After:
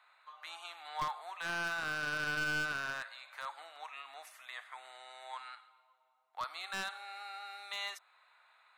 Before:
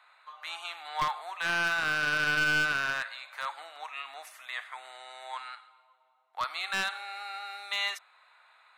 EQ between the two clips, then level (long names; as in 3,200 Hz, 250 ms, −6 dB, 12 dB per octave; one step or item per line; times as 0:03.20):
dynamic equaliser 2,400 Hz, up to −5 dB, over −42 dBFS, Q 0.95
−5.5 dB